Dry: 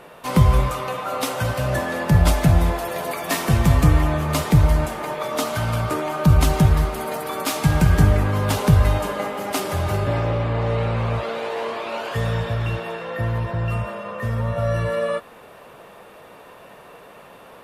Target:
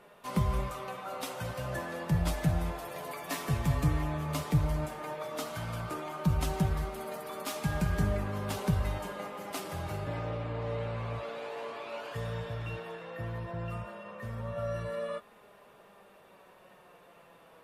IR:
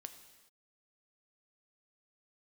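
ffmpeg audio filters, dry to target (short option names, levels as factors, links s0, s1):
-af "flanger=delay=4.9:depth=2.1:regen=52:speed=0.13:shape=sinusoidal,volume=0.355"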